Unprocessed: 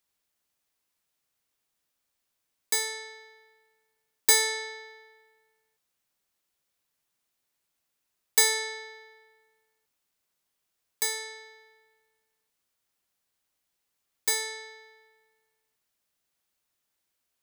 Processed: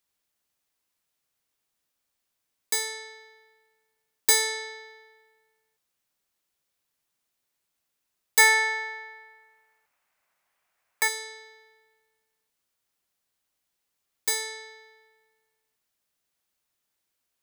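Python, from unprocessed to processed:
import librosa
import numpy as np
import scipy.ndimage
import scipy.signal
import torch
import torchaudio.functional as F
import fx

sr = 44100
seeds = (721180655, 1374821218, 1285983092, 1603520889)

y = fx.band_shelf(x, sr, hz=1200.0, db=11.5, octaves=2.4, at=(8.38, 11.07), fade=0.02)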